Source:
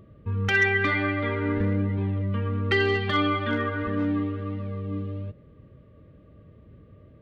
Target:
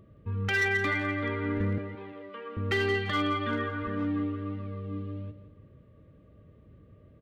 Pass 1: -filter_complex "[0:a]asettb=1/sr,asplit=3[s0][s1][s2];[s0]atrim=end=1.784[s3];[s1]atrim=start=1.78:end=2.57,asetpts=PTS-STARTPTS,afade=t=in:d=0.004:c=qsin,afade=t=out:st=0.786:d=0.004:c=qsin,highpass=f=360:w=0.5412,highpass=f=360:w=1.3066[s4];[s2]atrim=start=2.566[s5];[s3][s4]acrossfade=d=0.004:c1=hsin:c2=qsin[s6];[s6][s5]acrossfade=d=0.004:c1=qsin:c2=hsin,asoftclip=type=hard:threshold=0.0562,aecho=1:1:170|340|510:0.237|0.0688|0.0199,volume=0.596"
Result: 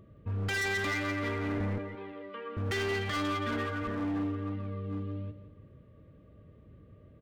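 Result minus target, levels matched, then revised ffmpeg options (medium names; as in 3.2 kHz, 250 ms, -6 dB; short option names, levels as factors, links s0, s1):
hard clipper: distortion +13 dB
-filter_complex "[0:a]asettb=1/sr,asplit=3[s0][s1][s2];[s0]atrim=end=1.784[s3];[s1]atrim=start=1.78:end=2.57,asetpts=PTS-STARTPTS,afade=t=in:d=0.004:c=qsin,afade=t=out:st=0.786:d=0.004:c=qsin,highpass=f=360:w=0.5412,highpass=f=360:w=1.3066[s4];[s2]atrim=start=2.566[s5];[s3][s4]acrossfade=d=0.004:c1=hsin:c2=qsin[s6];[s6][s5]acrossfade=d=0.004:c1=qsin:c2=hsin,asoftclip=type=hard:threshold=0.141,aecho=1:1:170|340|510:0.237|0.0688|0.0199,volume=0.596"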